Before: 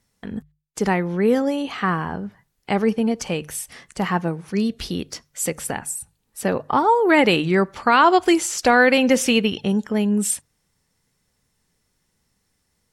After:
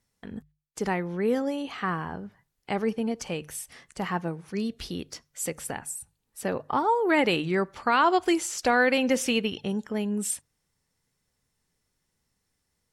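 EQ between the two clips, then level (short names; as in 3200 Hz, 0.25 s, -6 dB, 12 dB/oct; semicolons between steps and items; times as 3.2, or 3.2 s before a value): bell 200 Hz -2.5 dB 0.35 oct; -7.0 dB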